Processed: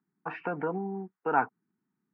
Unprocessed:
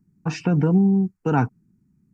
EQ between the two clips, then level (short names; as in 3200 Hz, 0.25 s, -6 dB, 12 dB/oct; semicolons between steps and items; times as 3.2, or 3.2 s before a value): HPF 650 Hz 12 dB/oct; LPF 2000 Hz 24 dB/oct; air absorption 80 m; +1.0 dB